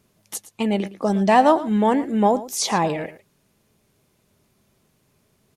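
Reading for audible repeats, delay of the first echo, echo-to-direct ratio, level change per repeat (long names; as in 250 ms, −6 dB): 1, 113 ms, −16.0 dB, repeats not evenly spaced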